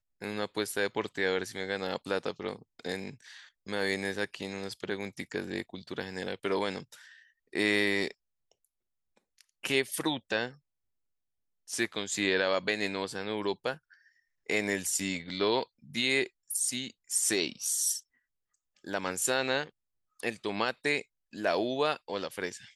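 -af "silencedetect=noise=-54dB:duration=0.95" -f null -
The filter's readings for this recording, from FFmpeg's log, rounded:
silence_start: 10.57
silence_end: 11.68 | silence_duration: 1.11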